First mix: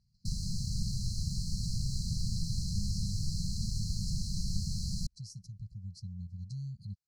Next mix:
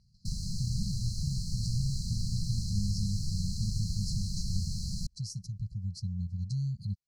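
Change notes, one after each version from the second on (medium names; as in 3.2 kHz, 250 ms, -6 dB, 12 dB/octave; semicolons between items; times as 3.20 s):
speech +7.5 dB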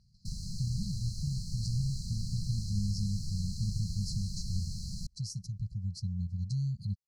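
background -4.0 dB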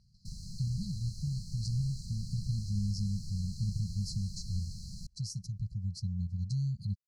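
background -5.0 dB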